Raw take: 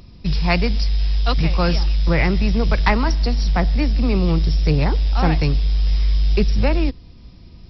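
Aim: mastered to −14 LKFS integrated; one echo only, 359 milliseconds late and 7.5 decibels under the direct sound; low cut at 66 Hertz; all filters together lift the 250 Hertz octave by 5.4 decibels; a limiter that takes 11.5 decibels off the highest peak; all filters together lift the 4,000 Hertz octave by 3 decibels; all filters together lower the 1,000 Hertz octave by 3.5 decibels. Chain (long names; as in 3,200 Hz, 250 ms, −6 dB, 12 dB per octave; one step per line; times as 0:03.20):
high-pass filter 66 Hz
parametric band 250 Hz +8 dB
parametric band 1,000 Hz −5.5 dB
parametric band 4,000 Hz +4 dB
brickwall limiter −14 dBFS
single-tap delay 359 ms −7.5 dB
level +8 dB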